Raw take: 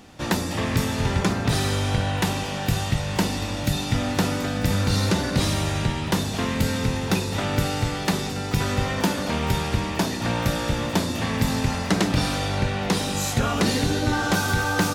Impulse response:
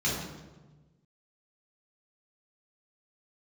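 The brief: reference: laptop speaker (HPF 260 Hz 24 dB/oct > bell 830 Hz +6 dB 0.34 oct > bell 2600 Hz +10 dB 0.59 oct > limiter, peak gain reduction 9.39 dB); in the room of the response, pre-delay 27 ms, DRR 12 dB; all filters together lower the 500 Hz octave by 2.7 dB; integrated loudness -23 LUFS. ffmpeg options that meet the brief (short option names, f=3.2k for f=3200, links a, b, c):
-filter_complex "[0:a]equalizer=f=500:t=o:g=-4,asplit=2[a][b];[1:a]atrim=start_sample=2205,adelay=27[c];[b][c]afir=irnorm=-1:irlink=0,volume=-22dB[d];[a][d]amix=inputs=2:normalize=0,highpass=f=260:w=0.5412,highpass=f=260:w=1.3066,equalizer=f=830:t=o:w=0.34:g=6,equalizer=f=2.6k:t=o:w=0.59:g=10,volume=2dB,alimiter=limit=-13dB:level=0:latency=1"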